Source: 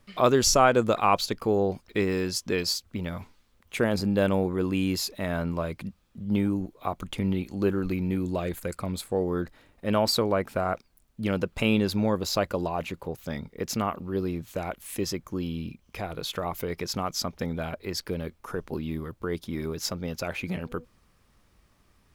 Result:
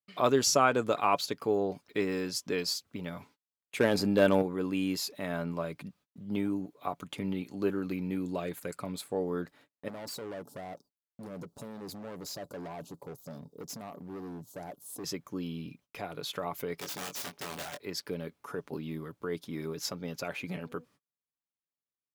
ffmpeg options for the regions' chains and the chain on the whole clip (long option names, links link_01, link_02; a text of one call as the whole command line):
ffmpeg -i in.wav -filter_complex "[0:a]asettb=1/sr,asplit=3[link_01][link_02][link_03];[link_01]atrim=end=3.804[link_04];[link_02]atrim=start=3.8:end=4.42,asetpts=PTS-STARTPTS,afade=type=in:duration=0.004:curve=qsin,afade=type=out:start_time=0.616:duration=0.004:curve=qsin,bandreject=frequency=160:width=5.1,acontrast=50,asoftclip=type=hard:threshold=-11dB[link_05];[link_03]atrim=start=4.416[link_06];[link_04][link_05]acrossfade=duration=0.004:curve1=hsin:curve2=qsin[link_07];[link_07][link_06]acrossfade=duration=0.004:curve1=qsin:curve2=hsin,asettb=1/sr,asplit=3[link_08][link_09][link_10];[link_08]atrim=end=9.884[link_11];[link_09]atrim=start=9.88:end=15.04,asetpts=PTS-STARTPTS,afade=type=in:duration=0.004:curve=qsin,afade=type=out:start_time=5.156:duration=0.004:curve=qsin,acompressor=threshold=-26dB:ratio=3:attack=3.2:release=140:knee=1:detection=peak,asuperstop=centerf=2100:order=4:qfactor=0.5,asoftclip=type=hard:threshold=-33dB[link_12];[link_10]atrim=start=15.036[link_13];[link_11][link_12]acrossfade=duration=0.004:curve1=hsin:curve2=qsin[link_14];[link_14][link_13]acrossfade=duration=0.004:curve1=qsin:curve2=hsin,asettb=1/sr,asplit=3[link_15][link_16][link_17];[link_15]atrim=end=16.794[link_18];[link_16]atrim=start=16.79:end=17.81,asetpts=PTS-STARTPTS,afade=type=in:duration=0.004:curve=qsin,afade=type=out:start_time=1.016:duration=0.004:curve=qsin,lowshelf=frequency=160:gain=-11,aeval=exprs='(mod(26.6*val(0)+1,2)-1)/26.6':channel_layout=same,asplit=2[link_19][link_20];[link_20]adelay=22,volume=-5.5dB[link_21];[link_19][link_21]amix=inputs=2:normalize=0,atrim=end_sample=44982[link_22];[link_17]atrim=start=17.806[link_23];[link_18][link_22]acrossfade=duration=0.004:curve1=hsin:curve2=qsin[link_24];[link_24][link_23]acrossfade=duration=0.004:curve1=qsin:curve2=hsin,highpass=150,agate=range=-35dB:threshold=-53dB:ratio=16:detection=peak,aecho=1:1:7:0.34,volume=-5dB" out.wav